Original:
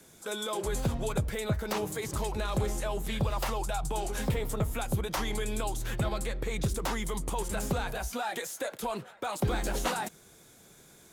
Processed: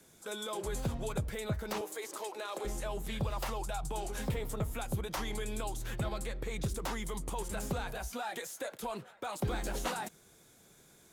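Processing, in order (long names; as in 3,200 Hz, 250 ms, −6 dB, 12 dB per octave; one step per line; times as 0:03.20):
0:01.81–0:02.65: high-pass filter 340 Hz 24 dB per octave
level −5 dB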